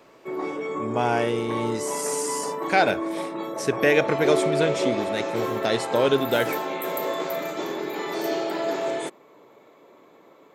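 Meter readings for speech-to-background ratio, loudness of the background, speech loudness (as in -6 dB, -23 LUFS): 3.5 dB, -28.5 LUFS, -25.0 LUFS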